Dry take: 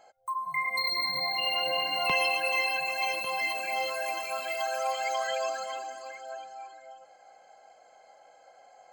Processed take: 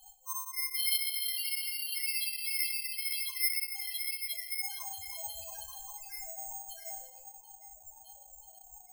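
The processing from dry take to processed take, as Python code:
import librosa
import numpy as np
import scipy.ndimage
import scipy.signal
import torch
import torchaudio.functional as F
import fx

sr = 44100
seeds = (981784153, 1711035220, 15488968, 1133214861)

p1 = np.minimum(x, 2.0 * 10.0 ** (-27.0 / 20.0) - x)
p2 = librosa.effects.preemphasis(p1, coef=0.8, zi=[0.0])
p3 = fx.dereverb_blind(p2, sr, rt60_s=0.77)
p4 = fx.high_shelf(p3, sr, hz=2500.0, db=8.0)
p5 = fx.over_compress(p4, sr, threshold_db=-58.0, ratio=-1.0)
p6 = p4 + (p5 * 10.0 ** (-1.5 / 20.0))
p7 = fx.spec_topn(p6, sr, count=1)
p8 = fx.room_shoebox(p7, sr, seeds[0], volume_m3=550.0, walls='mixed', distance_m=1.3)
y = (np.kron(p8[::6], np.eye(6)[0]) * 6)[:len(p8)]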